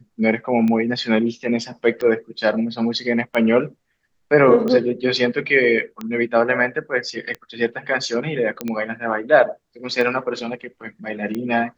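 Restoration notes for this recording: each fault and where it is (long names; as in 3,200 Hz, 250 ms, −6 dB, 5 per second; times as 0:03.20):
scratch tick 45 rpm −14 dBFS
0:08.61: click −10 dBFS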